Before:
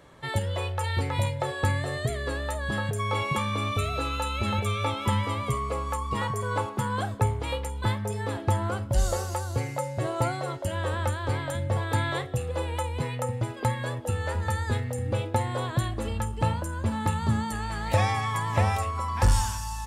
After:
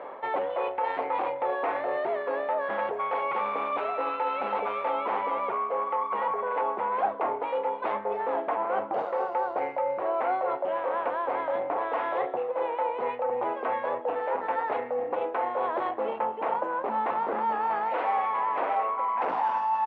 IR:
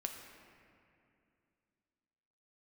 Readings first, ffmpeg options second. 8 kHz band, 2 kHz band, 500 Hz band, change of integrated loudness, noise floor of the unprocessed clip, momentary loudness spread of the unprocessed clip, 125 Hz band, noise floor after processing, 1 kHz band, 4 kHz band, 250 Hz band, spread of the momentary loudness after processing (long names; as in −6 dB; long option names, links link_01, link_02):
below −40 dB, −3.0 dB, +4.0 dB, −0.5 dB, −35 dBFS, 5 LU, below −30 dB, −36 dBFS, +5.0 dB, below −10 dB, −8.5 dB, 3 LU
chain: -filter_complex "[0:a]aeval=exprs='0.211*sin(PI/2*3.16*val(0)/0.211)':channel_layout=same,asplit=2[link_01][link_02];[link_02]aecho=0:1:260|520|780|1040:0.075|0.0405|0.0219|0.0118[link_03];[link_01][link_03]amix=inputs=2:normalize=0,acontrast=34,highpass=frequency=310:width=0.5412,highpass=frequency=310:width=1.3066,equalizer=frequency=320:width_type=q:width=4:gain=-5,equalizer=frequency=510:width_type=q:width=4:gain=5,equalizer=frequency=1000:width_type=q:width=4:gain=3,equalizer=frequency=1700:width_type=q:width=4:gain=-5,lowpass=frequency=2200:width=0.5412,lowpass=frequency=2200:width=1.3066,areverse,acompressor=threshold=-22dB:ratio=6,areverse,equalizer=frequency=780:width=2.3:gain=7.5,volume=-7dB"